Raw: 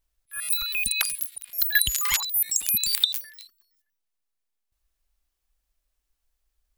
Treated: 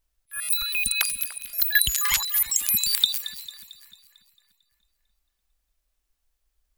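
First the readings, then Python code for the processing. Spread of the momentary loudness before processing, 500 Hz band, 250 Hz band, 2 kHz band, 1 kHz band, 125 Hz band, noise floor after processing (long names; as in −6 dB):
10 LU, can't be measured, +1.5 dB, +1.0 dB, +1.0 dB, +1.0 dB, −77 dBFS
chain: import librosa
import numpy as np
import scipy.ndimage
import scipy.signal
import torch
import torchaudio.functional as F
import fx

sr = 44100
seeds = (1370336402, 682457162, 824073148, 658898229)

y = fx.echo_split(x, sr, split_hz=2300.0, low_ms=294, high_ms=224, feedback_pct=52, wet_db=-14)
y = y * librosa.db_to_amplitude(1.0)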